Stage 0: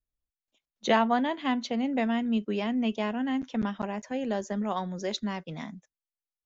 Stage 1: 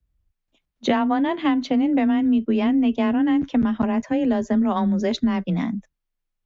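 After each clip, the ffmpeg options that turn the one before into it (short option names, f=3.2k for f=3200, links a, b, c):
-af "bass=f=250:g=11,treble=f=4k:g=-9,acompressor=threshold=-25dB:ratio=6,afreqshift=19,volume=8.5dB"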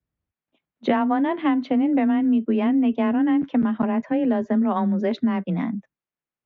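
-af "highpass=150,lowpass=2.4k"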